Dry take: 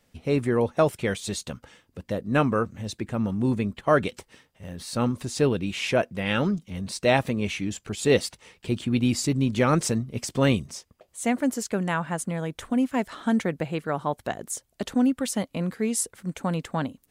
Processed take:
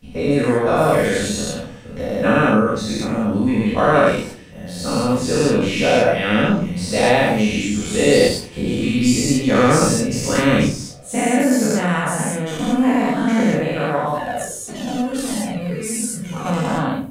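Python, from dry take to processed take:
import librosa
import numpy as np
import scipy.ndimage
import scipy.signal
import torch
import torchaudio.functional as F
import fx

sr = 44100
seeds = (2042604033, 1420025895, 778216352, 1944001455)

y = fx.spec_dilate(x, sr, span_ms=240)
y = fx.room_shoebox(y, sr, seeds[0], volume_m3=340.0, walls='furnished', distance_m=1.9)
y = fx.comb_cascade(y, sr, direction='falling', hz=1.7, at=(14.18, 16.46))
y = F.gain(torch.from_numpy(y), -2.5).numpy()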